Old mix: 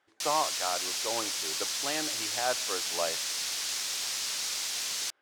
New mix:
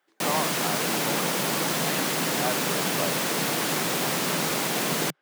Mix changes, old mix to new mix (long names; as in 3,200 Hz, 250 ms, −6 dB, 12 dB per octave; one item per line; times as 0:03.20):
background: remove resonant band-pass 5,500 Hz, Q 1.4
master: add Chebyshev high-pass filter 150 Hz, order 4